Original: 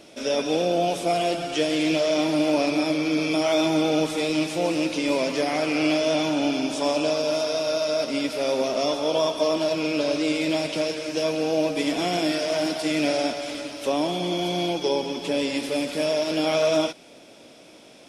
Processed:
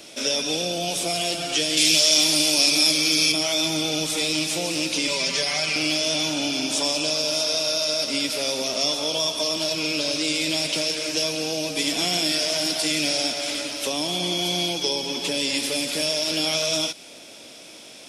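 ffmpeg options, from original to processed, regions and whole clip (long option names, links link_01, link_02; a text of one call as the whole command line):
ffmpeg -i in.wav -filter_complex "[0:a]asettb=1/sr,asplit=3[link_01][link_02][link_03];[link_01]atrim=end=1.774[link_04];[link_02]atrim=start=1.77:end=3.32,asetpts=PTS-STARTPTS,afade=type=in:duration=0.004:curve=qsin,afade=type=out:start_time=1.546:duration=0.004:curve=qsin,highpass=130,highshelf=frequency=3300:gain=11.5[link_05];[link_03]atrim=start=3.316[link_06];[link_04][link_05]acrossfade=duration=0.004:curve1=hsin:curve2=qsin[link_07];[link_07][link_06]acrossfade=duration=0.004:curve1=qsin:curve2=hsin,asettb=1/sr,asplit=3[link_08][link_09][link_10];[link_08]atrim=end=5.074[link_11];[link_09]atrim=start=5.07:end=5.76,asetpts=PTS-STARTPTS,afade=type=in:duration=0.004:curve=qsin,afade=type=out:start_time=0.686:duration=0.004:curve=qsin,lowpass=8100,equalizer=frequency=420:width_type=o:width=2.3:gain=-5.5,aecho=1:1:5.1:0.8,atrim=end_sample=30429[link_12];[link_10]atrim=start=5.756[link_13];[link_11][link_12]acrossfade=duration=0.004:curve1=hsin:curve2=qsin[link_14];[link_14][link_13]acrossfade=duration=0.004:curve1=qsin:curve2=hsin,highshelf=frequency=2100:gain=12,acrossover=split=210|3000[link_15][link_16][link_17];[link_16]acompressor=threshold=-27dB:ratio=6[link_18];[link_15][link_18][link_17]amix=inputs=3:normalize=0" out.wav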